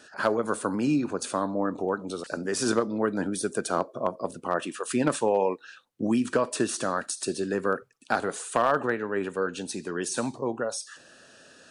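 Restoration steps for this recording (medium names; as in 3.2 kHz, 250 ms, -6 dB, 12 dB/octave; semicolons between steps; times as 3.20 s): clip repair -13 dBFS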